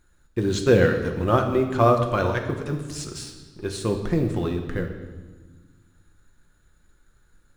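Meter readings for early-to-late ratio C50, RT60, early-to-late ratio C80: 7.5 dB, 1.3 s, 9.0 dB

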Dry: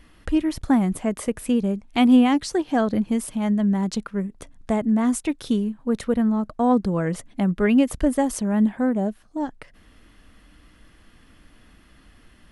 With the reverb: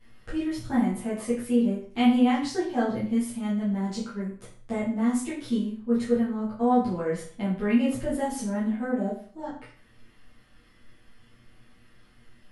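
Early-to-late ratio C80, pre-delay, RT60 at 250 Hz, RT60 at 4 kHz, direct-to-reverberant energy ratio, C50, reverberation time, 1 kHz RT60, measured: 9.0 dB, 8 ms, 0.45 s, 0.45 s, -12.0 dB, 5.0 dB, 0.45 s, 0.45 s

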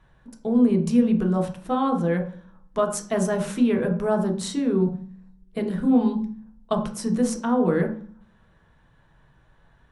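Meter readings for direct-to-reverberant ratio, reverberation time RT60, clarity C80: 2.0 dB, 0.45 s, 14.0 dB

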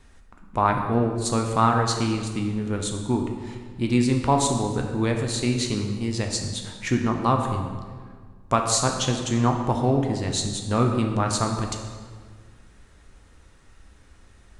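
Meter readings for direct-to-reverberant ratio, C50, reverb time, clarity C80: 2.5 dB, 5.0 dB, 1.7 s, 6.5 dB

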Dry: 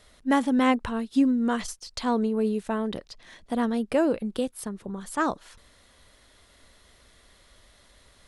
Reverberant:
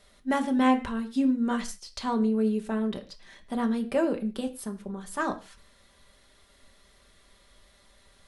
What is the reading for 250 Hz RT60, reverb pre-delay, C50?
n/a, 5 ms, 15.0 dB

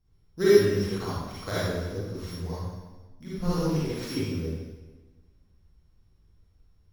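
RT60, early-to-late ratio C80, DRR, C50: 1.3 s, -1.0 dB, -10.5 dB, -6.5 dB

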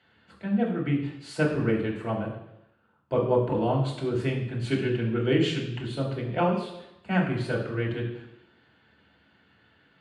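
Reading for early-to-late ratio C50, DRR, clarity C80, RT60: 6.0 dB, -4.0 dB, 8.5 dB, 0.85 s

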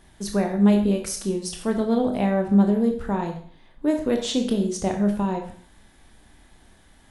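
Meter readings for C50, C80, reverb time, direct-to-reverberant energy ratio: 8.0 dB, 11.5 dB, 0.50 s, 3.0 dB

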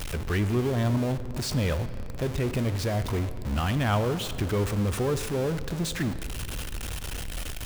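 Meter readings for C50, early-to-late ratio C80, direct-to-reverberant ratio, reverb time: 12.5 dB, 13.0 dB, 11.5 dB, 3.0 s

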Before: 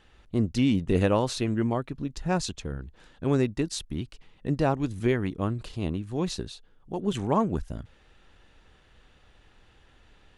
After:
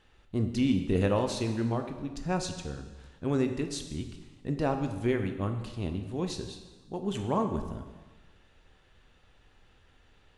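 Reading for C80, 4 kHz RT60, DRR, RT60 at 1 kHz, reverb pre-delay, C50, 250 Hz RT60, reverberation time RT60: 10.0 dB, 1.2 s, 5.5 dB, 1.3 s, 4 ms, 8.0 dB, 1.3 s, 1.3 s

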